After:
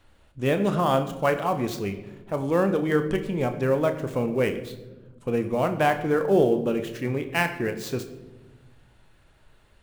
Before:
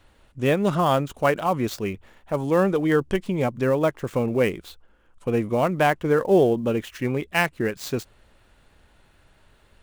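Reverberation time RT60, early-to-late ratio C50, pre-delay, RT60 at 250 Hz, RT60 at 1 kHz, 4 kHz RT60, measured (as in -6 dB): 1.2 s, 11.5 dB, 30 ms, 1.8 s, 0.90 s, 0.70 s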